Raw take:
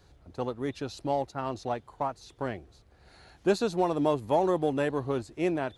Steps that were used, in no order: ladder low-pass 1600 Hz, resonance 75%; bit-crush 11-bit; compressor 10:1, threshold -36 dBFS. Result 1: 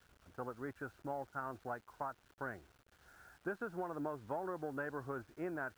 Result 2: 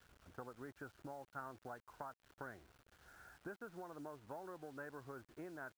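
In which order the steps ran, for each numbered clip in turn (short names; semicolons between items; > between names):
ladder low-pass > compressor > bit-crush; compressor > ladder low-pass > bit-crush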